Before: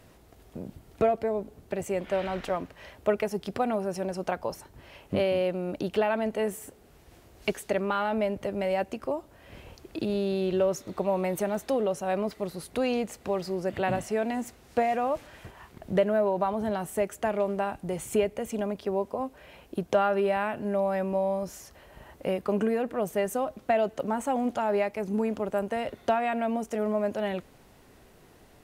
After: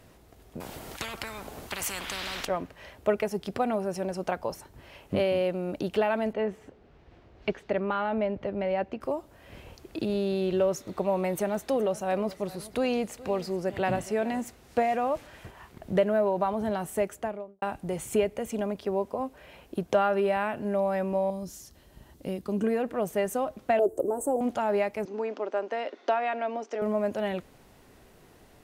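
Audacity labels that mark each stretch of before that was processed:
0.600000	2.450000	spectrum-flattening compressor 10:1
6.330000	9.010000	distance through air 230 m
11.330000	14.410000	delay 420 ms -18.5 dB
17.020000	17.620000	studio fade out
21.300000	22.640000	high-order bell 1.1 kHz -9.5 dB 2.9 oct
23.790000	24.410000	FFT filter 100 Hz 0 dB, 220 Hz -11 dB, 340 Hz +13 dB, 2.2 kHz -25 dB, 3.3 kHz -22 dB, 5.5 kHz -13 dB, 8.2 kHz +7 dB
25.050000	26.820000	elliptic band-pass 300–5700 Hz

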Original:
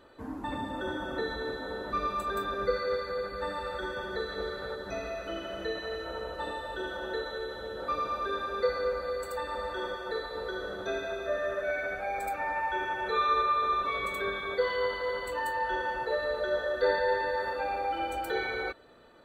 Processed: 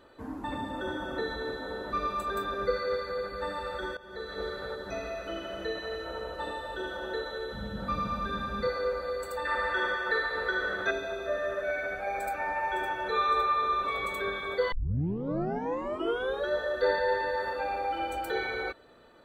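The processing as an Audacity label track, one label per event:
3.970000	4.440000	fade in, from -19.5 dB
7.520000	8.670000	resonant low shelf 270 Hz +11 dB, Q 3
9.450000	10.910000	peaking EQ 1.8 kHz +13.5 dB 1.2 oct
11.500000	12.510000	echo throw 560 ms, feedback 60%, level -9.5 dB
14.720000	14.720000	tape start 1.77 s

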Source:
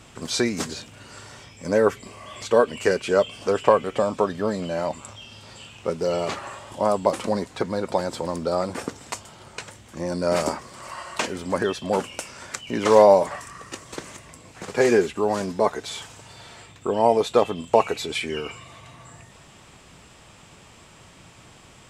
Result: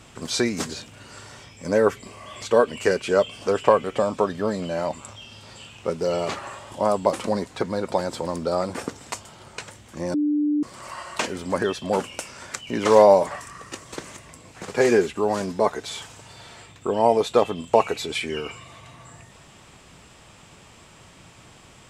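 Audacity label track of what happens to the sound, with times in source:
10.140000	10.630000	bleep 296 Hz -18.5 dBFS

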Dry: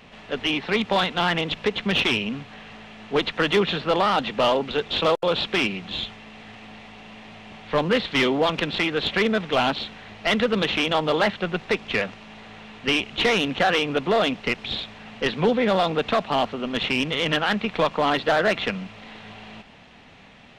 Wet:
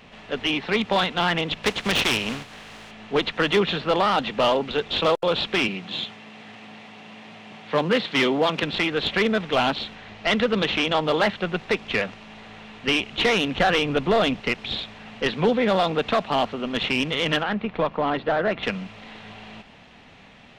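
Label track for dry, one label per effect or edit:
1.630000	2.900000	spectral contrast reduction exponent 0.62
5.680000	8.630000	high-pass 120 Hz 24 dB/octave
9.950000	11.070000	low-pass 8.2 kHz
13.540000	14.400000	bass shelf 110 Hz +11.5 dB
17.430000	18.630000	tape spacing loss at 10 kHz 29 dB

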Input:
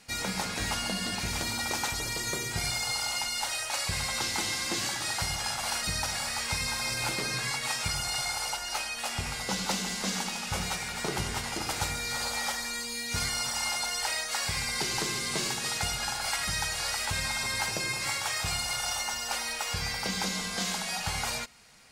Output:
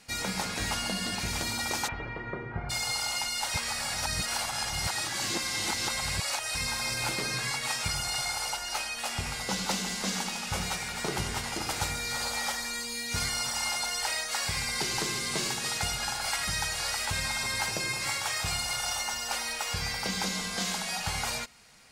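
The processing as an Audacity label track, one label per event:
1.870000	2.690000	low-pass 2.5 kHz -> 1.5 kHz 24 dB/octave
3.540000	6.550000	reverse

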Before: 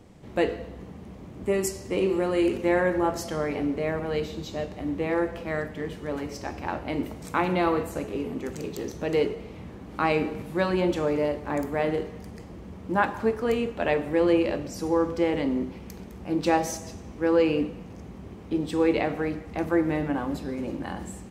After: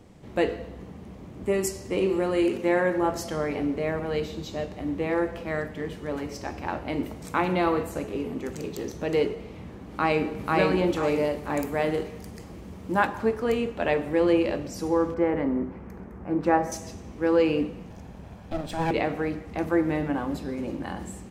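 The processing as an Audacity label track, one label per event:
2.450000	3.010000	peaking EQ 64 Hz -15 dB
9.900000	10.480000	echo throw 490 ms, feedback 35%, level -0.5 dB
11.030000	13.070000	treble shelf 4.8 kHz +8 dB
15.140000	16.720000	resonant high shelf 2.4 kHz -14 dB, Q 1.5
17.900000	18.910000	comb filter that takes the minimum delay 1.2 ms

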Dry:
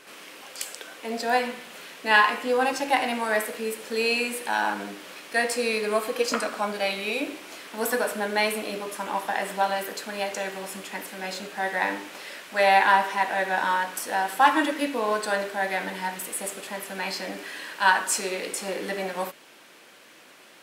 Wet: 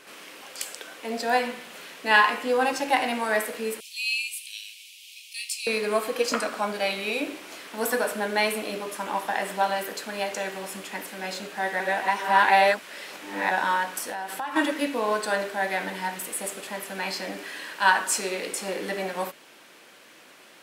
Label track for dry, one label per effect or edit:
3.800000	5.670000	steep high-pass 2.4 kHz 72 dB/octave
11.800000	13.510000	reverse
14.090000	14.560000	compression, threshold -29 dBFS

